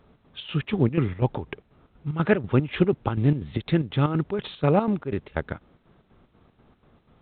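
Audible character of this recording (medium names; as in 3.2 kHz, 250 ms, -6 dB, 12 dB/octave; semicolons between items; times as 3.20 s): chopped level 4.1 Hz, depth 65%, duty 65%; A-law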